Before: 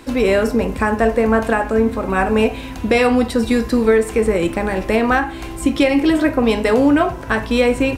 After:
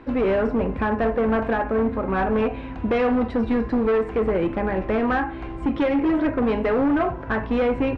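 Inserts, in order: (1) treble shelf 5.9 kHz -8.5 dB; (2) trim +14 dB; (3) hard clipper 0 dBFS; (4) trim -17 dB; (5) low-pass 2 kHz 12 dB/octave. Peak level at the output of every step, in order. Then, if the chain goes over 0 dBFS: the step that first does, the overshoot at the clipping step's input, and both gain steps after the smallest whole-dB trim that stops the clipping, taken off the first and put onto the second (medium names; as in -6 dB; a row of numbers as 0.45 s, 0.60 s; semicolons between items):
-5.0 dBFS, +9.0 dBFS, 0.0 dBFS, -17.0 dBFS, -16.5 dBFS; step 2, 9.0 dB; step 2 +5 dB, step 4 -8 dB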